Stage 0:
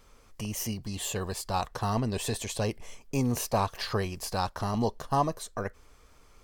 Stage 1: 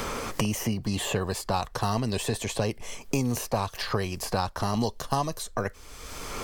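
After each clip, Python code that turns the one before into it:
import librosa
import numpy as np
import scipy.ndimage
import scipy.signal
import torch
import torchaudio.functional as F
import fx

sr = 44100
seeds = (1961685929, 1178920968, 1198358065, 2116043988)

y = fx.band_squash(x, sr, depth_pct=100)
y = y * 10.0 ** (1.5 / 20.0)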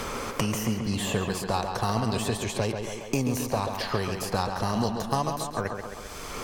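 y = fx.cheby_harmonics(x, sr, harmonics=(7,), levels_db=(-35,), full_scale_db=-9.5)
y = fx.echo_tape(y, sr, ms=136, feedback_pct=70, wet_db=-4.0, lp_hz=3400.0, drive_db=15.0, wow_cents=33)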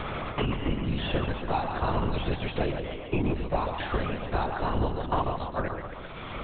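y = fx.lpc_vocoder(x, sr, seeds[0], excitation='whisper', order=10)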